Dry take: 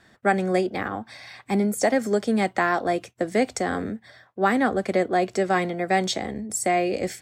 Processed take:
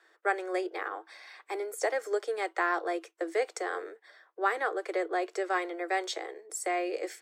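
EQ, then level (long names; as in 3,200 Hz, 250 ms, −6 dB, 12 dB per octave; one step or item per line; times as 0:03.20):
Chebyshev high-pass with heavy ripple 320 Hz, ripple 6 dB
−3.5 dB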